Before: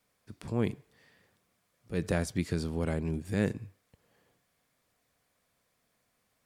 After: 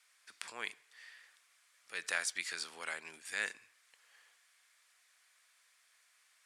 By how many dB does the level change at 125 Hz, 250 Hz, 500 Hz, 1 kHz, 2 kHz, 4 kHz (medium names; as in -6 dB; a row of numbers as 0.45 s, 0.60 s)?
under -35 dB, -29.5 dB, -17.5 dB, -4.0 dB, +5.0 dB, +4.5 dB